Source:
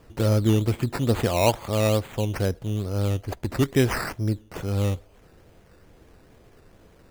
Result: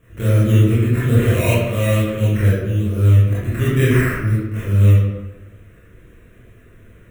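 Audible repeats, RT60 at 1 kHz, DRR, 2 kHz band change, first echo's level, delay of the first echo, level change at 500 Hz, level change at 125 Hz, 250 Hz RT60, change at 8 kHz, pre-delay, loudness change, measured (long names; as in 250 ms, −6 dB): no echo audible, 1.1 s, −10.0 dB, +8.0 dB, no echo audible, no echo audible, +3.5 dB, +11.0 dB, 1.2 s, +1.0 dB, 21 ms, +8.5 dB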